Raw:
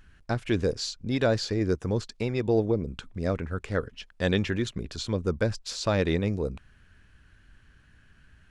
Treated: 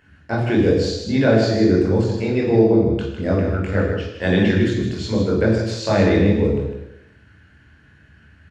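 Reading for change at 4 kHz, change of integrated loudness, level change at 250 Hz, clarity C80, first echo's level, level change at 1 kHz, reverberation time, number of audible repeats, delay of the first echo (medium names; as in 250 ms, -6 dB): +4.5 dB, +10.0 dB, +12.0 dB, 4.0 dB, -7.0 dB, +8.5 dB, 0.90 s, 1, 155 ms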